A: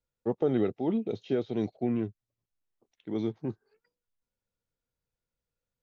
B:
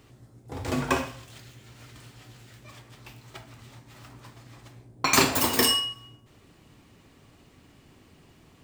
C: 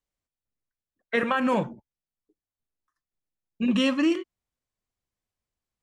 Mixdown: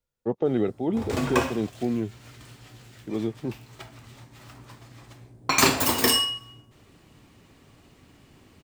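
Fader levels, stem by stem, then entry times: +2.5 dB, +1.0 dB, muted; 0.00 s, 0.45 s, muted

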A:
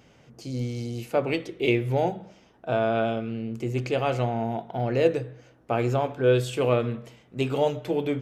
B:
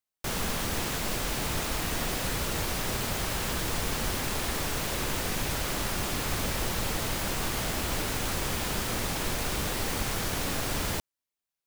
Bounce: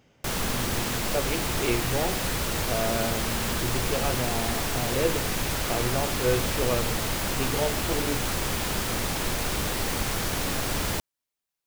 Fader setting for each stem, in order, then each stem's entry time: −5.0, +2.5 decibels; 0.00, 0.00 seconds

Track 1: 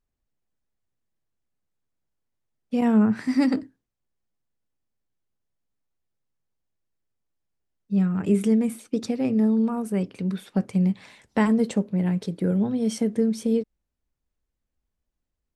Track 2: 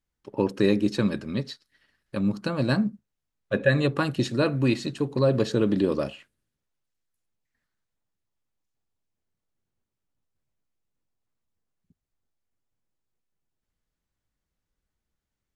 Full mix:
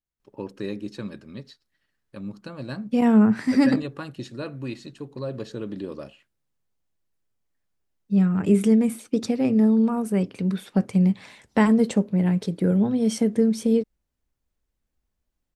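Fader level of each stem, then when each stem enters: +2.5, −10.0 decibels; 0.20, 0.00 seconds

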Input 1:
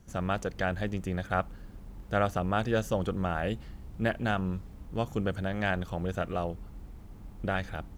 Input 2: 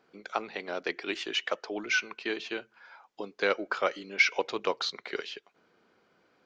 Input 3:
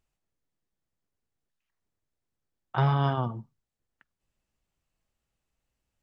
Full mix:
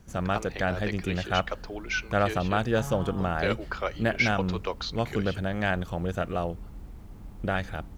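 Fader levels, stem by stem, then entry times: +2.5, −2.5, −13.5 decibels; 0.00, 0.00, 0.00 seconds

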